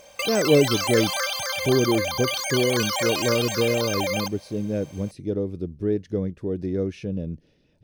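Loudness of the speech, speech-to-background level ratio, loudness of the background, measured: -25.5 LUFS, 0.0 dB, -25.5 LUFS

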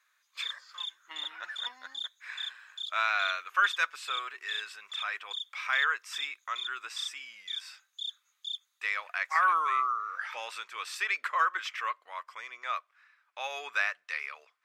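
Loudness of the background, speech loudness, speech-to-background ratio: -39.0 LUFS, -32.0 LUFS, 7.0 dB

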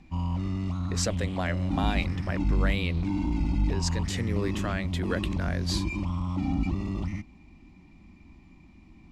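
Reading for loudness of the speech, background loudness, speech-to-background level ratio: -33.5 LUFS, -30.0 LUFS, -3.5 dB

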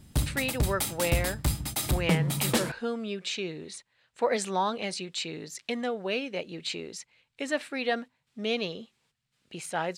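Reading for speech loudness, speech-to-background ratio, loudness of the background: -32.5 LUFS, -3.0 dB, -29.5 LUFS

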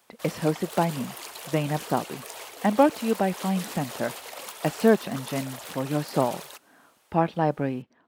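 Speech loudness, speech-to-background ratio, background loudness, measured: -27.0 LUFS, 11.5 dB, -38.5 LUFS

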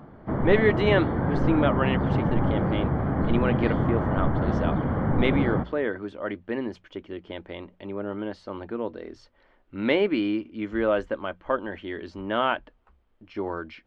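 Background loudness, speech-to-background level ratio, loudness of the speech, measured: -26.0 LUFS, -2.5 dB, -28.5 LUFS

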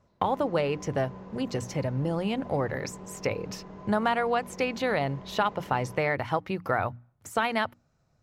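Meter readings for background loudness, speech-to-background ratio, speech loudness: -45.0 LUFS, 15.5 dB, -29.5 LUFS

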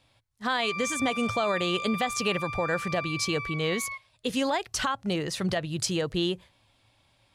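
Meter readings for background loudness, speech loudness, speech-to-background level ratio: -34.0 LUFS, -29.0 LUFS, 5.0 dB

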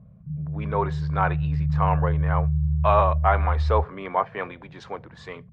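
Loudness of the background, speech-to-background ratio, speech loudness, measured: -25.5 LUFS, -0.5 dB, -26.0 LUFS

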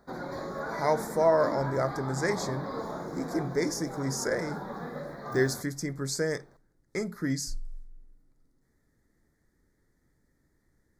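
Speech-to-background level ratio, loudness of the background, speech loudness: 7.5 dB, -38.0 LUFS, -30.5 LUFS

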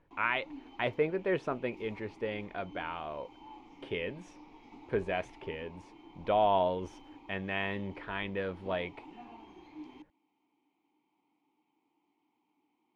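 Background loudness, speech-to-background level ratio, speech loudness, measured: -53.0 LUFS, 18.5 dB, -34.5 LUFS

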